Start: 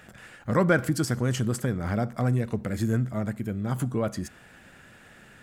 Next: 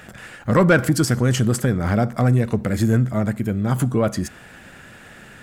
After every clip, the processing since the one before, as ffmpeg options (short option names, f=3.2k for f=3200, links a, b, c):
-af "asoftclip=type=tanh:threshold=-14dB,volume=8.5dB"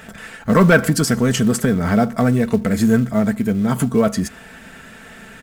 -filter_complex "[0:a]aecho=1:1:4.5:0.57,asplit=2[a][b];[b]acrusher=bits=5:mode=log:mix=0:aa=0.000001,volume=-5.5dB[c];[a][c]amix=inputs=2:normalize=0,volume=-1.5dB"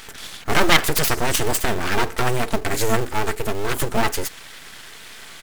-af "aeval=exprs='abs(val(0))':c=same,tiltshelf=f=1.5k:g=-5,volume=2dB"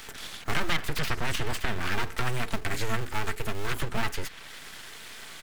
-filter_complex "[0:a]acrossover=split=210|1100|4200[a][b][c][d];[a]acompressor=threshold=-19dB:ratio=4[e];[b]acompressor=threshold=-36dB:ratio=4[f];[c]acompressor=threshold=-26dB:ratio=4[g];[d]acompressor=threshold=-41dB:ratio=4[h];[e][f][g][h]amix=inputs=4:normalize=0,volume=-3.5dB"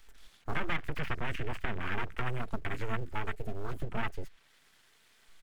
-af "afwtdn=0.0251,volume=-4.5dB"